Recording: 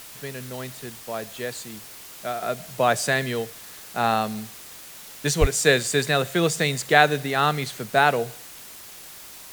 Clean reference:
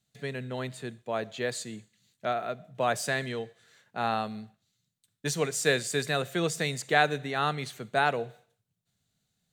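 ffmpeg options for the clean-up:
-filter_complex "[0:a]asplit=3[a][b][c];[a]afade=t=out:st=5.4:d=0.02[d];[b]highpass=f=140:w=0.5412,highpass=f=140:w=1.3066,afade=t=in:st=5.4:d=0.02,afade=t=out:st=5.52:d=0.02[e];[c]afade=t=in:st=5.52:d=0.02[f];[d][e][f]amix=inputs=3:normalize=0,afwtdn=0.0079,asetnsamples=n=441:p=0,asendcmd='2.42 volume volume -7dB',volume=0dB"

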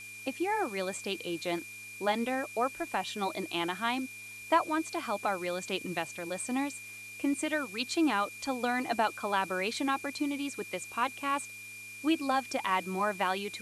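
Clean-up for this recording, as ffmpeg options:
-af "bandreject=f=105:t=h:w=4,bandreject=f=210:t=h:w=4,bandreject=f=315:t=h:w=4,bandreject=f=420:t=h:w=4,bandreject=f=2.4k:w=30,afftdn=nr=30:nf=-46"

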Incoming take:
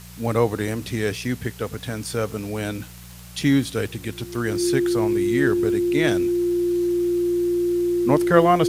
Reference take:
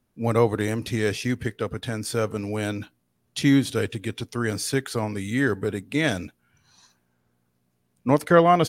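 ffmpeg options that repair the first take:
-af "adeclick=t=4,bandreject=f=59.5:t=h:w=4,bandreject=f=119:t=h:w=4,bandreject=f=178.5:t=h:w=4,bandreject=f=350:w=30,afwtdn=0.0056"

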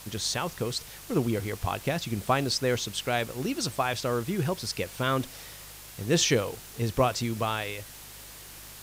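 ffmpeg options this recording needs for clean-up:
-af "adeclick=t=4,bandreject=f=50.5:t=h:w=4,bandreject=f=101:t=h:w=4,bandreject=f=151.5:t=h:w=4,afwtdn=0.0056"

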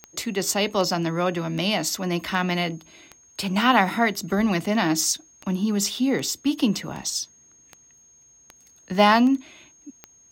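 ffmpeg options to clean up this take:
-af "adeclick=t=4,bandreject=f=6.5k:w=30"

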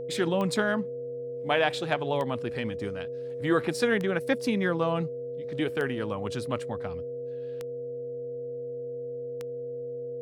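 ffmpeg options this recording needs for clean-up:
-af "adeclick=t=4,bandreject=f=130.4:t=h:w=4,bandreject=f=260.8:t=h:w=4,bandreject=f=391.2:t=h:w=4,bandreject=f=521.6:t=h:w=4,bandreject=f=652:t=h:w=4,bandreject=f=480:w=30"

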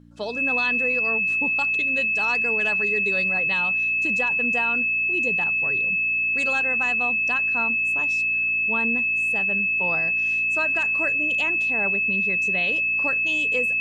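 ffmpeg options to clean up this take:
-af "bandreject=f=58.2:t=h:w=4,bandreject=f=116.4:t=h:w=4,bandreject=f=174.6:t=h:w=4,bandreject=f=232.8:t=h:w=4,bandreject=f=291:t=h:w=4,bandreject=f=2.6k:w=30"

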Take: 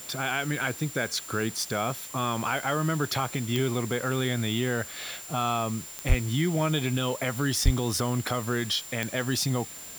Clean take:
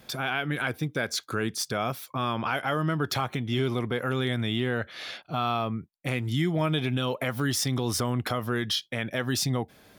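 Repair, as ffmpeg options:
-filter_complex "[0:a]adeclick=t=4,bandreject=f=7.2k:w=30,asplit=3[a][b][c];[a]afade=t=out:st=6.08:d=0.02[d];[b]highpass=f=140:w=0.5412,highpass=f=140:w=1.3066,afade=t=in:st=6.08:d=0.02,afade=t=out:st=6.2:d=0.02[e];[c]afade=t=in:st=6.2:d=0.02[f];[d][e][f]amix=inputs=3:normalize=0,asplit=3[g][h][i];[g]afade=t=out:st=7.64:d=0.02[j];[h]highpass=f=140:w=0.5412,highpass=f=140:w=1.3066,afade=t=in:st=7.64:d=0.02,afade=t=out:st=7.76:d=0.02[k];[i]afade=t=in:st=7.76:d=0.02[l];[j][k][l]amix=inputs=3:normalize=0,afwtdn=0.0056"

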